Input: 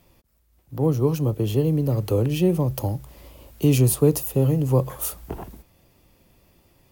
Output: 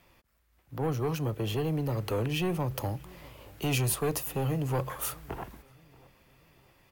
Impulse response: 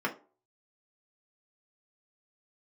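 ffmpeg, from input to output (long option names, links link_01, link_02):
-filter_complex "[0:a]equalizer=frequency=1700:width=0.55:gain=11,acrossover=split=1700[link_01][link_02];[link_01]asoftclip=type=tanh:threshold=-17.5dB[link_03];[link_03][link_02]amix=inputs=2:normalize=0,asplit=2[link_04][link_05];[link_05]adelay=633,lowpass=frequency=1400:poles=1,volume=-23dB,asplit=2[link_06][link_07];[link_07]adelay=633,lowpass=frequency=1400:poles=1,volume=0.43,asplit=2[link_08][link_09];[link_09]adelay=633,lowpass=frequency=1400:poles=1,volume=0.43[link_10];[link_04][link_06][link_08][link_10]amix=inputs=4:normalize=0,volume=-7dB"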